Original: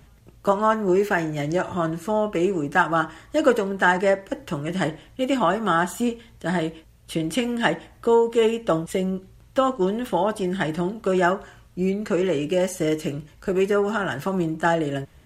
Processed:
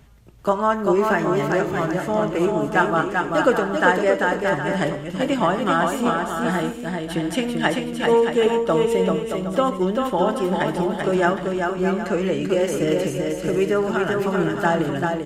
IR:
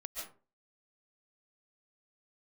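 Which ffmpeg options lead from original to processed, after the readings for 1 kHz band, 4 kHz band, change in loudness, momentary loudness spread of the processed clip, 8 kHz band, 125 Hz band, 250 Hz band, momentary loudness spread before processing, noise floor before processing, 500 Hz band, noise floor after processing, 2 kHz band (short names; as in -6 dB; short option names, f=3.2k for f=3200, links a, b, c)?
+2.5 dB, +2.0 dB, +2.5 dB, 5 LU, +1.0 dB, +2.0 dB, +2.5 dB, 8 LU, -52 dBFS, +2.5 dB, -31 dBFS, +2.5 dB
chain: -filter_complex "[0:a]aecho=1:1:390|624|764.4|848.6|899.2:0.631|0.398|0.251|0.158|0.1,asplit=2[a][b];[1:a]atrim=start_sample=2205,asetrate=74970,aresample=44100,lowpass=6.7k[c];[b][c]afir=irnorm=-1:irlink=0,volume=-6.5dB[d];[a][d]amix=inputs=2:normalize=0,volume=-1dB"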